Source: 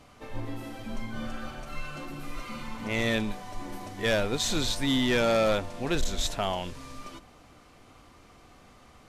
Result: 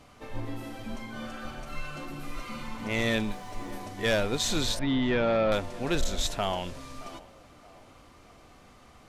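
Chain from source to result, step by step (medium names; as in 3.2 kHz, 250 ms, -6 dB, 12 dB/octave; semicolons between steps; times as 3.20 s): 0.95–1.45 s: bass shelf 140 Hz -10 dB; 3.19–3.73 s: word length cut 12-bit, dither triangular; 4.79–5.52 s: distance through air 330 m; band-passed feedback delay 622 ms, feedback 45%, band-pass 710 Hz, level -18 dB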